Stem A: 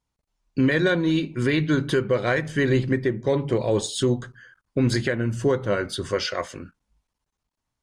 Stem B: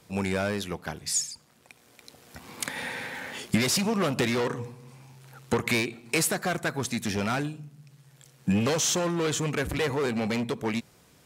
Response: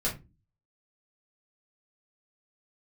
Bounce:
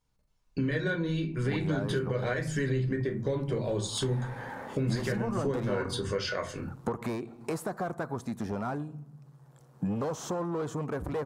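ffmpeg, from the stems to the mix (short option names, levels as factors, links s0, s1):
-filter_complex "[0:a]acompressor=threshold=0.0794:ratio=2.5,volume=0.708,asplit=2[s0][s1];[s1]volume=0.531[s2];[1:a]highshelf=f=1600:t=q:w=1.5:g=-13.5,adelay=1350,volume=1.06[s3];[2:a]atrim=start_sample=2205[s4];[s2][s4]afir=irnorm=-1:irlink=0[s5];[s0][s3][s5]amix=inputs=3:normalize=0,acompressor=threshold=0.02:ratio=2"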